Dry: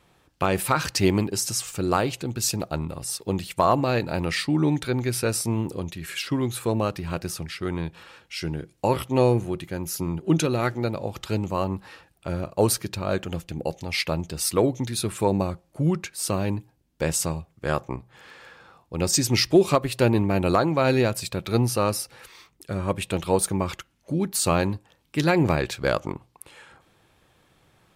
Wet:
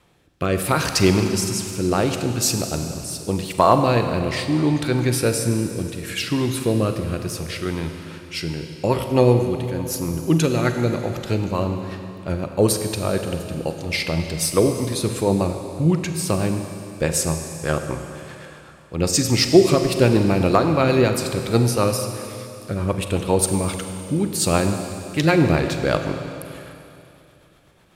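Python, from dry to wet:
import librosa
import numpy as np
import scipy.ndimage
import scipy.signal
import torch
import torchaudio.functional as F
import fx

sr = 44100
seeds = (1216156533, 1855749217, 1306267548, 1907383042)

y = fx.rotary_switch(x, sr, hz=0.75, then_hz=8.0, switch_at_s=7.74)
y = fx.rev_schroeder(y, sr, rt60_s=2.8, comb_ms=33, drr_db=6.0)
y = y * librosa.db_to_amplitude(5.0)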